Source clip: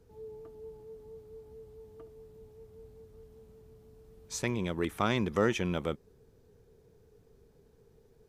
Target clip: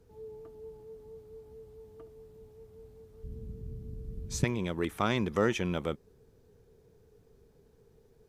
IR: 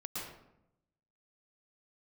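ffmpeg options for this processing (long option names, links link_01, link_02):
-filter_complex "[0:a]asplit=3[link_01][link_02][link_03];[link_01]afade=type=out:start_time=3.23:duration=0.02[link_04];[link_02]asubboost=boost=10.5:cutoff=250,afade=type=in:start_time=3.23:duration=0.02,afade=type=out:start_time=4.43:duration=0.02[link_05];[link_03]afade=type=in:start_time=4.43:duration=0.02[link_06];[link_04][link_05][link_06]amix=inputs=3:normalize=0"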